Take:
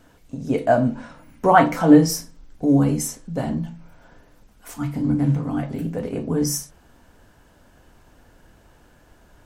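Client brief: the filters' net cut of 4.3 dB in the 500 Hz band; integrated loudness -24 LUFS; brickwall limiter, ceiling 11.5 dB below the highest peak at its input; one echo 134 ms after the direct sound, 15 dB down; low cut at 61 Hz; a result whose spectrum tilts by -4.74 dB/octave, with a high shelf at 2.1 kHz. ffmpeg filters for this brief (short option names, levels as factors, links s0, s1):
-af "highpass=61,equalizer=f=500:t=o:g=-6.5,highshelf=f=2100:g=8,alimiter=limit=0.237:level=0:latency=1,aecho=1:1:134:0.178"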